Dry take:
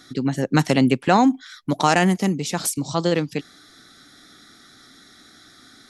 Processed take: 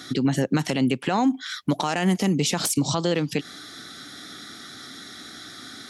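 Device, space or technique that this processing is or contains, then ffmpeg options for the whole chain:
broadcast voice chain: -af "highpass=80,deesser=0.4,acompressor=threshold=-23dB:ratio=4,equalizer=f=3k:t=o:w=0.4:g=4,alimiter=limit=-21dB:level=0:latency=1:release=105,volume=8dB"

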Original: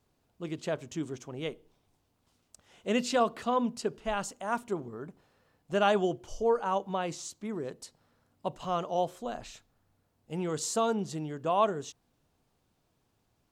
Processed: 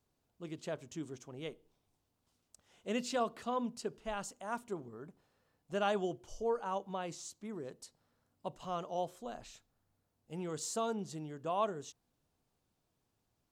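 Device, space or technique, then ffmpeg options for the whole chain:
exciter from parts: -filter_complex "[0:a]asplit=2[a][b];[b]highpass=3.4k,asoftclip=type=tanh:threshold=-35.5dB,volume=-9dB[c];[a][c]amix=inputs=2:normalize=0,volume=-7.5dB"

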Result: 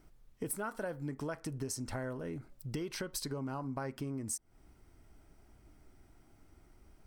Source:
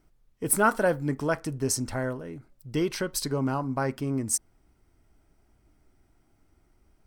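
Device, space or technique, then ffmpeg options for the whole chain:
serial compression, peaks first: -af "acompressor=threshold=-35dB:ratio=6,acompressor=threshold=-45dB:ratio=1.5,volume=3dB"

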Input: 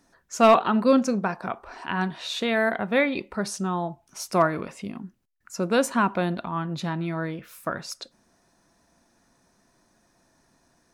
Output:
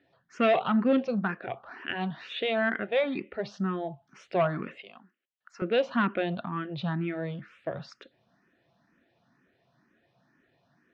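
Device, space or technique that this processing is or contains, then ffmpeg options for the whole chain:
barber-pole phaser into a guitar amplifier: -filter_complex "[0:a]asplit=2[a][b];[b]afreqshift=2.1[c];[a][c]amix=inputs=2:normalize=1,asoftclip=type=tanh:threshold=-16dB,highpass=110,equalizer=f=130:t=q:w=4:g=7,equalizer=f=960:t=q:w=4:g=-7,equalizer=f=1.8k:t=q:w=4:g=3,equalizer=f=3k:t=q:w=4:g=4,lowpass=f=3.6k:w=0.5412,lowpass=f=3.6k:w=1.3066,asettb=1/sr,asplit=3[d][e][f];[d]atrim=end=4.784[g];[e]atrim=start=4.78:end=5.62,asetpts=PTS-STARTPTS,afade=t=in:d=0.004:c=qsin,afade=t=out:st=0.836:d=0.004:c=qsin,highpass=660[h];[f]atrim=start=5.616[i];[g][h]acrossfade=d=0.004:c1=hsin:c2=qsin[j];[j][i]acrossfade=d=0.004:c1=qsin:c2=hsin"

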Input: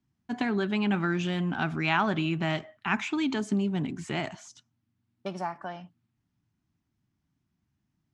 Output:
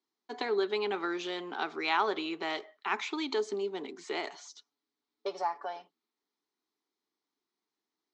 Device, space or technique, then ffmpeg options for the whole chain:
phone speaker on a table: -filter_complex "[0:a]asettb=1/sr,asplit=3[a][b][c];[a]atrim=end=4.274[d];[b]atrim=start=4.27:end=5.82,asetpts=PTS-STARTPTS,afade=t=in:d=0.004:c=qsin,afade=t=out:st=1.546:d=0.004:c=qsin,aecho=1:1:7:0.62,atrim=end_sample=68355[e];[c]atrim=start=5.816[f];[d][e]acrossfade=d=0.004:c1=hsin:c2=qsin[g];[g][f]acrossfade=d=0.004:c1=qsin:c2=hsin,highpass=f=390:w=0.5412,highpass=f=390:w=1.3066,equalizer=f=430:t=q:w=4:g=9,equalizer=f=630:t=q:w=4:g=-7,equalizer=f=1.6k:t=q:w=4:g=-7,equalizer=f=2.7k:t=q:w=4:g=-7,equalizer=f=4.1k:t=q:w=4:g=6,lowpass=f=6.5k:w=0.5412,lowpass=f=6.5k:w=1.3066"

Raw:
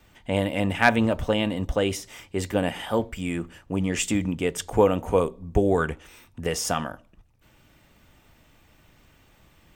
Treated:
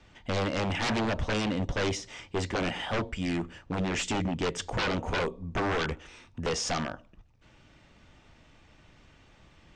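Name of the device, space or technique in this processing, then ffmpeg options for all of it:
synthesiser wavefolder: -af "aeval=exprs='0.0708*(abs(mod(val(0)/0.0708+3,4)-2)-1)':c=same,lowpass=f=6.6k:w=0.5412,lowpass=f=6.6k:w=1.3066"

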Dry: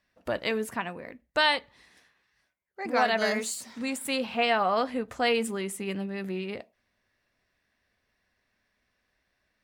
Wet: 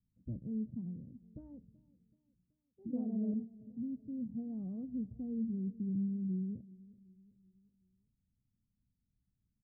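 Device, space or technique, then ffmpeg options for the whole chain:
the neighbour's flat through the wall: -filter_complex "[0:a]lowpass=f=220:w=0.5412,lowpass=f=220:w=1.3066,equalizer=f=130:t=o:w=0.64:g=7,asettb=1/sr,asplit=3[a][b][c];[a]atrim=end=2.934[d];[b]atrim=start=2.93:end=3.34,asetpts=PTS-STARTPTS,afade=t=in:d=0.004:c=qsin,afade=t=out:st=0.406:d=0.004:c=qsin,equalizer=f=490:t=o:w=2.2:g=8.5[e];[c]atrim=start=3.336[f];[d][e]acrossfade=d=0.004:c1=hsin:c2=qsin[g];[g][f]acrossfade=d=0.004:c1=qsin:c2=hsin,asplit=2[h][i];[i]adelay=379,lowpass=f=2k:p=1,volume=-21dB,asplit=2[j][k];[k]adelay=379,lowpass=f=2k:p=1,volume=0.49,asplit=2[l][m];[m]adelay=379,lowpass=f=2k:p=1,volume=0.49,asplit=2[n][o];[o]adelay=379,lowpass=f=2k:p=1,volume=0.49[p];[h][j][l][n][p]amix=inputs=5:normalize=0"

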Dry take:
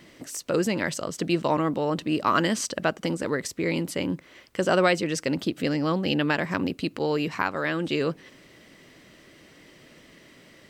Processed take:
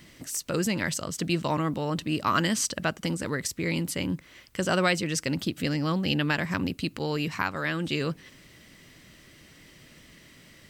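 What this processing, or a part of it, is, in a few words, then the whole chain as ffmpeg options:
smiley-face EQ: -af "lowshelf=f=190:g=7,equalizer=f=450:t=o:w=2.3:g=-7,highshelf=f=7.5k:g=6.5"

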